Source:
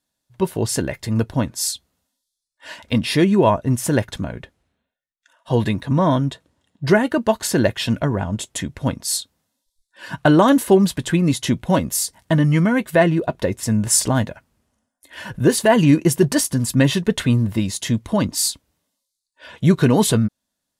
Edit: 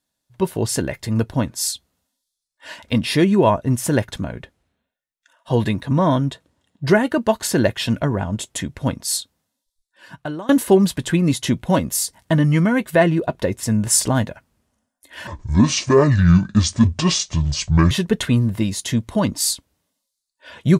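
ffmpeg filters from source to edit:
ffmpeg -i in.wav -filter_complex "[0:a]asplit=4[link_01][link_02][link_03][link_04];[link_01]atrim=end=10.49,asetpts=PTS-STARTPTS,afade=type=out:start_time=9.16:duration=1.33:silence=0.0630957[link_05];[link_02]atrim=start=10.49:end=15.274,asetpts=PTS-STARTPTS,afade=type=in:duration=0.004:curve=hsin:silence=0.0630957[link_06];[link_03]atrim=start=15.27:end=16.88,asetpts=PTS-STARTPTS,asetrate=26901,aresample=44100,atrim=end_sample=116395,asetpts=PTS-STARTPTS[link_07];[link_04]atrim=start=16.876[link_08];[link_05][link_06]concat=n=2:v=0:a=1[link_09];[link_09][link_07]acrossfade=duration=0.004:curve1=hsin:curve2=hsin[link_10];[link_10][link_08]acrossfade=duration=0.004:curve1=hsin:curve2=hsin" out.wav

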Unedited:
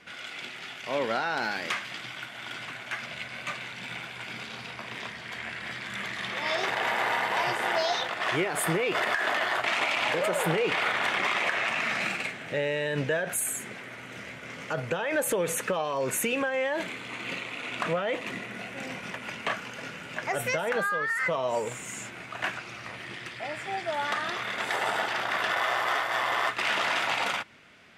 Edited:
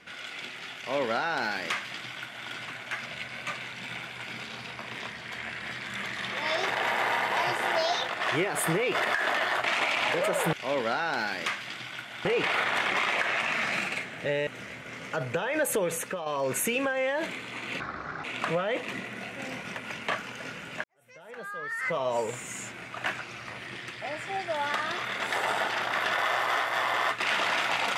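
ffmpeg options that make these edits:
ffmpeg -i in.wav -filter_complex "[0:a]asplit=8[link_01][link_02][link_03][link_04][link_05][link_06][link_07][link_08];[link_01]atrim=end=10.532[link_09];[link_02]atrim=start=0.768:end=2.492[link_10];[link_03]atrim=start=10.528:end=12.752[link_11];[link_04]atrim=start=14.038:end=15.83,asetpts=PTS-STARTPTS,afade=type=out:start_time=1.322:duration=0.47:silence=0.398107[link_12];[link_05]atrim=start=15.83:end=17.374,asetpts=PTS-STARTPTS,afade=type=in:duration=0.004:curve=hsin:silence=0.398107[link_13];[link_06]atrim=start=17.37:end=17.62,asetpts=PTS-STARTPTS,asetrate=25137,aresample=44100,atrim=end_sample=19342,asetpts=PTS-STARTPTS[link_14];[link_07]atrim=start=17.616:end=20.22,asetpts=PTS-STARTPTS,afade=type=out:start_time=2.6:duration=0.004:curve=hsin[link_15];[link_08]atrim=start=20.22,asetpts=PTS-STARTPTS,afade=type=in:duration=1.2:curve=qua[link_16];[link_09][link_10]acrossfade=duration=0.004:curve1=hsin:curve2=hsin[link_17];[link_17][link_11]acrossfade=duration=0.004:curve1=hsin:curve2=hsin[link_18];[link_12][link_13]concat=n=2:v=0:a=1[link_19];[link_18][link_19]acrossfade=duration=0.004:curve1=hsin:curve2=hsin[link_20];[link_20][link_14]acrossfade=duration=0.004:curve1=hsin:curve2=hsin[link_21];[link_15][link_16]concat=n=2:v=0:a=1[link_22];[link_21][link_22]acrossfade=duration=0.004:curve1=hsin:curve2=hsin" out.wav

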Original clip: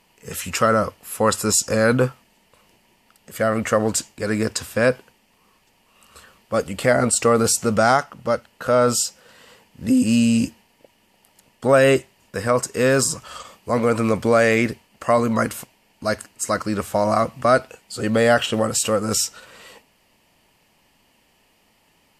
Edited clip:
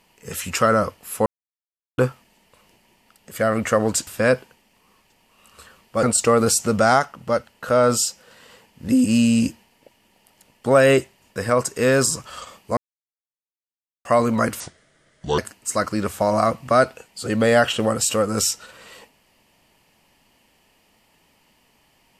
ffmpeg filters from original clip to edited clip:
ffmpeg -i in.wav -filter_complex "[0:a]asplit=9[link_01][link_02][link_03][link_04][link_05][link_06][link_07][link_08][link_09];[link_01]atrim=end=1.26,asetpts=PTS-STARTPTS,afade=type=out:start_time=1.256:duration=0.004:curve=hsin[link_10];[link_02]atrim=start=1.26:end=1.98,asetpts=PTS-STARTPTS,volume=0[link_11];[link_03]atrim=start=1.98:end=4.072,asetpts=PTS-STARTPTS,afade=type=in:duration=0.004:curve=hsin[link_12];[link_04]atrim=start=4.638:end=6.602[link_13];[link_05]atrim=start=7.008:end=13.75,asetpts=PTS-STARTPTS,afade=type=out:start_time=6.738:duration=0.004:curve=hsin[link_14];[link_06]atrim=start=13.75:end=15.03,asetpts=PTS-STARTPTS,volume=0[link_15];[link_07]atrim=start=15.03:end=15.584,asetpts=PTS-STARTPTS,afade=type=in:duration=0.004:curve=hsin[link_16];[link_08]atrim=start=15.58:end=16.12,asetpts=PTS-STARTPTS,asetrate=30429,aresample=44100,atrim=end_sample=34513,asetpts=PTS-STARTPTS[link_17];[link_09]atrim=start=16.116[link_18];[link_10][link_11][link_12]concat=n=3:v=0:a=1[link_19];[link_19][link_13]acrossfade=duration=0.004:curve1=hsin:curve2=hsin[link_20];[link_14][link_15][link_16]concat=n=3:v=0:a=1[link_21];[link_20][link_21]acrossfade=duration=0.004:curve1=hsin:curve2=hsin[link_22];[link_22][link_17]acrossfade=duration=0.004:curve1=hsin:curve2=hsin[link_23];[link_23][link_18]acrossfade=duration=0.004:curve1=hsin:curve2=hsin" out.wav

